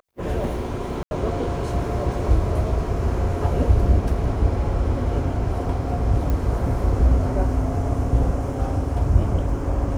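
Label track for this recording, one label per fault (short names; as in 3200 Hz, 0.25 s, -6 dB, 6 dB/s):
1.030000	1.110000	gap 81 ms
6.300000	6.300000	pop -14 dBFS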